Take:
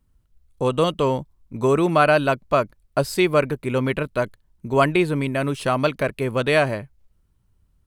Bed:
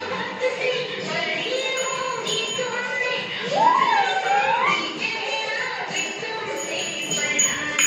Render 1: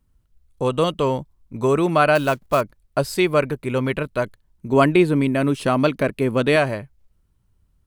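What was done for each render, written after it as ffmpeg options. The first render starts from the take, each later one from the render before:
-filter_complex "[0:a]asettb=1/sr,asplit=3[a][b][c];[a]atrim=end=2.154[d];[b]atrim=start=2.15:end=2.61,asetpts=PTS-STARTPTS,afade=t=in:d=0.004:c=qsin,afade=t=out:st=0.456:d=0.004:c=qsin,acrusher=bits=5:mode=log:mix=0:aa=0.000001[e];[c]atrim=start=2.606[f];[d][e]acrossfade=d=0.004:c1=hsin:c2=qsin[g];[g][f]acrossfade=d=0.004:c1=qsin:c2=hsin,asettb=1/sr,asplit=3[h][i][j];[h]atrim=end=4.694[k];[i]atrim=start=4.69:end=6.56,asetpts=PTS-STARTPTS,afade=t=in:d=0.004:c=qsin,afade=t=out:st=1.866:d=0.004:c=qsin,equalizer=f=260:w=1.1:g=6.5[l];[j]atrim=start=6.556[m];[k][l]acrossfade=d=0.004:c1=hsin:c2=qsin[n];[n][m]acrossfade=d=0.004:c1=qsin:c2=hsin"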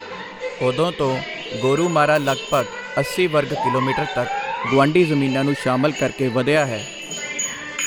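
-filter_complex "[1:a]volume=-5dB[a];[0:a][a]amix=inputs=2:normalize=0"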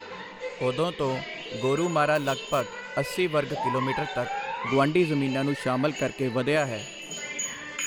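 -af "volume=-7dB"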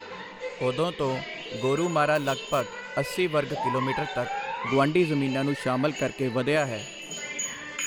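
-filter_complex "[0:a]asettb=1/sr,asplit=3[a][b][c];[a]atrim=end=1.564[d];[b]atrim=start=1.56:end=1.96,asetpts=PTS-STARTPTS,afade=t=in:d=0.004:c=qsin,afade=t=out:st=0.396:d=0.004:c=qsin,aeval=exprs='sgn(val(0))*max(abs(val(0))-0.001,0)':c=same[e];[c]atrim=start=1.956[f];[d][e]acrossfade=d=0.004:c1=hsin:c2=qsin[g];[g][f]acrossfade=d=0.004:c1=qsin:c2=hsin"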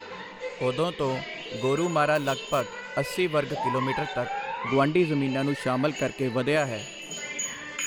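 -filter_complex "[0:a]asettb=1/sr,asplit=3[a][b][c];[a]atrim=end=4.134[d];[b]atrim=start=4.13:end=5.39,asetpts=PTS-STARTPTS,afade=t=in:d=0.004:c=qsin,afade=t=out:st=1.256:d=0.004:c=qsin,highshelf=f=5.6k:g=-6.5[e];[c]atrim=start=5.386[f];[d][e]acrossfade=d=0.004:c1=hsin:c2=qsin[g];[g][f]acrossfade=d=0.004:c1=qsin:c2=hsin"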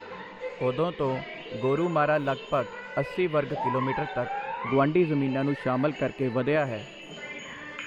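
-filter_complex "[0:a]highshelf=f=3.6k:g=-9,acrossover=split=3600[a][b];[b]acompressor=threshold=-59dB:ratio=4:attack=1:release=60[c];[a][c]amix=inputs=2:normalize=0"

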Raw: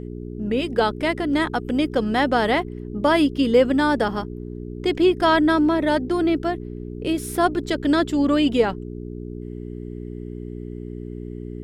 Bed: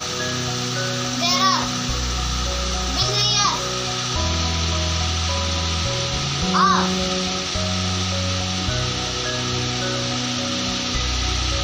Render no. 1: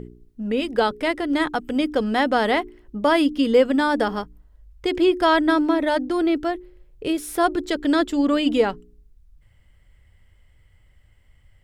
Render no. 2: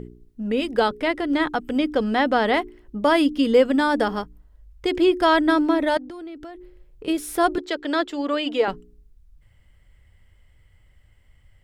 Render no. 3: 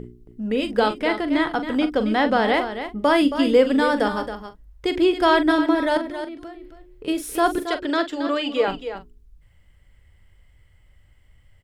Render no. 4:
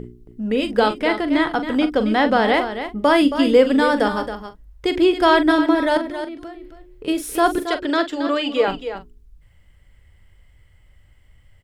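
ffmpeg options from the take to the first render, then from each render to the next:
-af "bandreject=f=60:t=h:w=4,bandreject=f=120:t=h:w=4,bandreject=f=180:t=h:w=4,bandreject=f=240:t=h:w=4,bandreject=f=300:t=h:w=4,bandreject=f=360:t=h:w=4,bandreject=f=420:t=h:w=4"
-filter_complex "[0:a]asettb=1/sr,asplit=3[a][b][c];[a]atrim=end=0.884[d];[b]atrim=start=0.88:end=2.54,asetpts=PTS-STARTPTS,afade=t=in:d=0.004:c=qsin,afade=t=out:st=1.656:d=0.004:c=qsin,acrossover=split=5200[e][f];[f]acompressor=threshold=-53dB:ratio=4:attack=1:release=60[g];[e][g]amix=inputs=2:normalize=0[h];[c]atrim=start=2.536[i];[d][h]acrossfade=d=0.004:c1=hsin:c2=qsin[j];[j][i]acrossfade=d=0.004:c1=qsin:c2=hsin,asettb=1/sr,asplit=3[k][l][m];[k]atrim=end=5.974[n];[l]atrim=start=5.97:end=7.08,asetpts=PTS-STARTPTS,afade=t=in:d=0.004:c=qsin,afade=t=out:st=1.106:d=0.004:c=qsin,acompressor=threshold=-34dB:ratio=8:attack=3.2:release=140:knee=1:detection=peak[o];[m]atrim=start=7.076[p];[n][o]acrossfade=d=0.004:c1=hsin:c2=qsin[q];[q][p]acrossfade=d=0.004:c1=qsin:c2=hsin,asettb=1/sr,asplit=3[r][s][t];[r]atrim=end=7.584[u];[s]atrim=start=7.58:end=8.68,asetpts=PTS-STARTPTS,afade=t=in:d=0.004:c=qsin,afade=t=out:st=1.096:d=0.004:c=qsin,acrossover=split=340 5800:gain=0.126 1 0.251[v][w][x];[v][w][x]amix=inputs=3:normalize=0[y];[t]atrim=start=8.676[z];[u][y]acrossfade=d=0.004:c1=hsin:c2=qsin[aa];[aa][z]acrossfade=d=0.004:c1=qsin:c2=hsin"
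-filter_complex "[0:a]asplit=2[a][b];[b]adelay=42,volume=-11dB[c];[a][c]amix=inputs=2:normalize=0,aecho=1:1:273:0.316"
-af "volume=2.5dB"

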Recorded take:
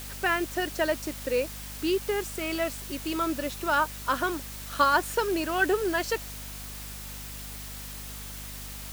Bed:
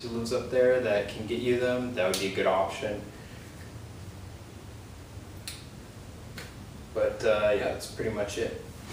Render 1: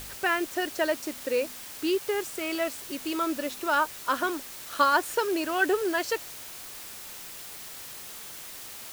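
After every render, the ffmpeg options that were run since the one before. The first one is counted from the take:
-af "bandreject=f=50:t=h:w=4,bandreject=f=100:t=h:w=4,bandreject=f=150:t=h:w=4,bandreject=f=200:t=h:w=4,bandreject=f=250:t=h:w=4"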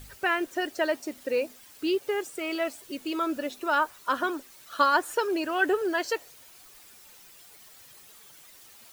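-af "afftdn=nr=12:nf=-42"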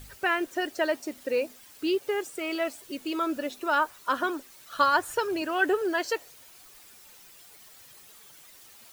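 -filter_complex "[0:a]asettb=1/sr,asplit=3[a][b][c];[a]atrim=end=4.744[d];[b]atrim=start=4.74:end=5.42,asetpts=PTS-STARTPTS,afade=t=in:d=0.004:c=qsin,afade=t=out:st=0.676:d=0.004:c=qsin,lowshelf=f=180:t=q:w=1.5:g=11[e];[c]atrim=start=5.416[f];[d][e]acrossfade=d=0.004:c1=hsin:c2=qsin[g];[g][f]acrossfade=d=0.004:c1=qsin:c2=hsin"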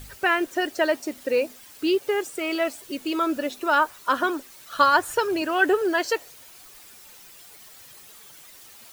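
-af "volume=4.5dB"

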